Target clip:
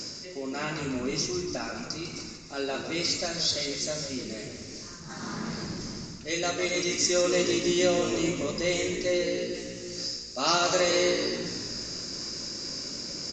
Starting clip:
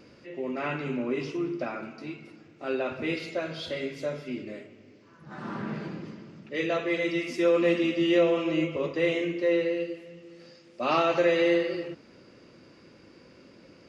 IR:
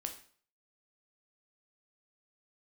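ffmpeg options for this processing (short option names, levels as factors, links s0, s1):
-filter_complex "[0:a]equalizer=f=490:t=o:w=1.5:g=-3.5,areverse,acompressor=mode=upward:threshold=0.0224:ratio=2.5,areverse,asetrate=45938,aresample=44100,asplit=2[s0][s1];[s1]asplit=7[s2][s3][s4][s5][s6][s7][s8];[s2]adelay=149,afreqshift=-60,volume=0.355[s9];[s3]adelay=298,afreqshift=-120,volume=0.214[s10];[s4]adelay=447,afreqshift=-180,volume=0.127[s11];[s5]adelay=596,afreqshift=-240,volume=0.0767[s12];[s6]adelay=745,afreqshift=-300,volume=0.0462[s13];[s7]adelay=894,afreqshift=-360,volume=0.0275[s14];[s8]adelay=1043,afreqshift=-420,volume=0.0166[s15];[s9][s10][s11][s12][s13][s14][s15]amix=inputs=7:normalize=0[s16];[s0][s16]amix=inputs=2:normalize=0,aexciter=amount=9.1:drive=8.3:freq=4600,aresample=16000,aresample=44100"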